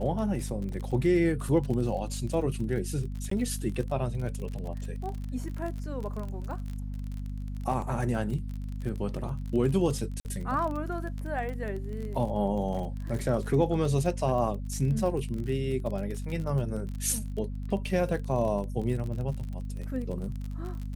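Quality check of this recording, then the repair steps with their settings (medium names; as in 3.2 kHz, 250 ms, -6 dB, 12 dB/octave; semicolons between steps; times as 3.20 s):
crackle 35 per s -34 dBFS
hum 50 Hz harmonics 5 -35 dBFS
3.30–3.31 s: dropout 14 ms
10.20–10.25 s: dropout 49 ms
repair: de-click; de-hum 50 Hz, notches 5; interpolate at 3.30 s, 14 ms; interpolate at 10.20 s, 49 ms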